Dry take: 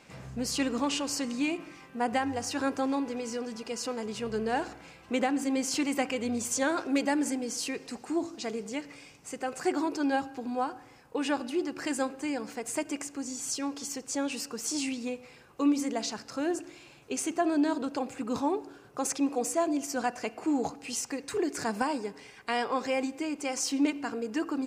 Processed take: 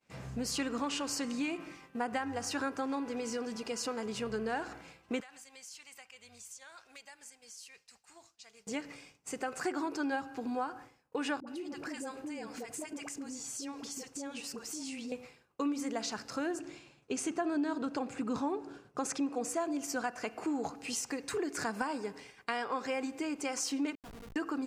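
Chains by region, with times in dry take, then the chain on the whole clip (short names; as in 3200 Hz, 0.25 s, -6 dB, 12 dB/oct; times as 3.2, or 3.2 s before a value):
5.2–8.67 passive tone stack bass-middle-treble 10-0-10 + compressor 5:1, threshold -46 dBFS
11.4–15.12 dispersion highs, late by 71 ms, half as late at 560 Hz + compressor 4:1, threshold -39 dBFS
16.59–19.49 LPF 9800 Hz + bell 180 Hz +4.5 dB 1.8 oct
23.95–24.36 expander -33 dBFS + resonator 53 Hz, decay 0.87 s, mix 80% + Schmitt trigger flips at -44 dBFS
whole clip: expander -45 dBFS; dynamic EQ 1400 Hz, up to +6 dB, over -47 dBFS, Q 1.7; compressor 2.5:1, threshold -34 dBFS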